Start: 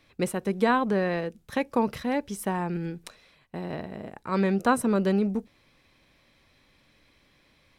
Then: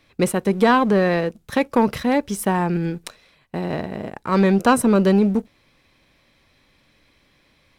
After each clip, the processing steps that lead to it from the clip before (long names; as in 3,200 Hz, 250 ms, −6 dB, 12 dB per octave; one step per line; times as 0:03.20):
leveller curve on the samples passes 1
level +5 dB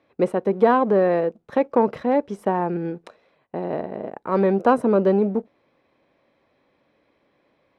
resonant band-pass 540 Hz, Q 0.99
level +2 dB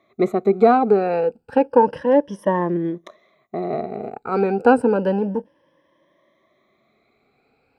rippled gain that drifts along the octave scale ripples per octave 1.2, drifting +0.3 Hz, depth 17 dB
level −1 dB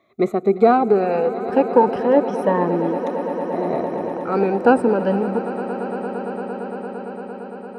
echo that builds up and dies away 114 ms, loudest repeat 8, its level −17 dB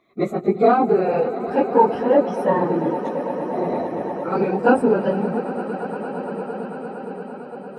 random phases in long frames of 50 ms
level −1 dB